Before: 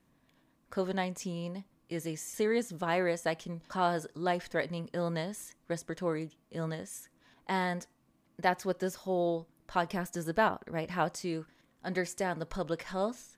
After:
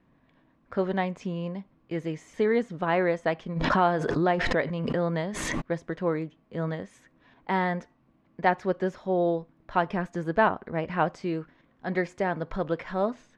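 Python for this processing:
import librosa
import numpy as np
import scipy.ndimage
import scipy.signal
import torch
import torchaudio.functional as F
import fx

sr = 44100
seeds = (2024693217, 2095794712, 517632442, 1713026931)

y = scipy.signal.sosfilt(scipy.signal.butter(2, 2500.0, 'lowpass', fs=sr, output='sos'), x)
y = fx.pre_swell(y, sr, db_per_s=26.0, at=(3.55, 5.6), fade=0.02)
y = y * librosa.db_to_amplitude(5.5)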